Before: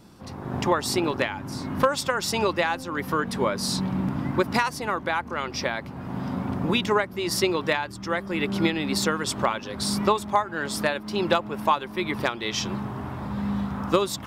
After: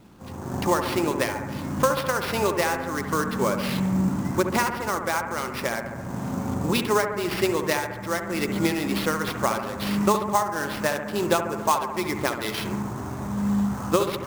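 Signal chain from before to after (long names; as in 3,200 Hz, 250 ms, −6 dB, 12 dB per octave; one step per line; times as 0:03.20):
high-shelf EQ 4,900 Hz −7 dB
sample-rate reduction 7,500 Hz, jitter 20%
bucket-brigade delay 69 ms, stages 1,024, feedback 69%, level −8 dB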